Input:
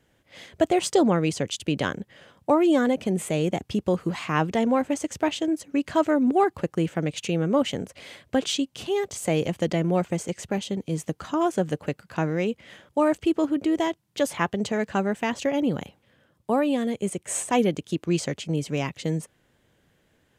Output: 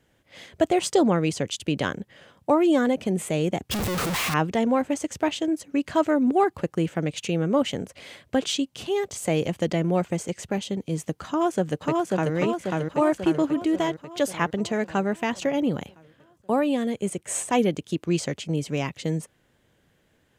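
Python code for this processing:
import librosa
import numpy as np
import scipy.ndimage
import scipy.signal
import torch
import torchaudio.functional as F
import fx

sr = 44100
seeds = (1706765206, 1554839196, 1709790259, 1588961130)

y = fx.clip_1bit(x, sr, at=(3.71, 4.34))
y = fx.echo_throw(y, sr, start_s=11.27, length_s=1.07, ms=540, feedback_pct=60, wet_db=-1.5)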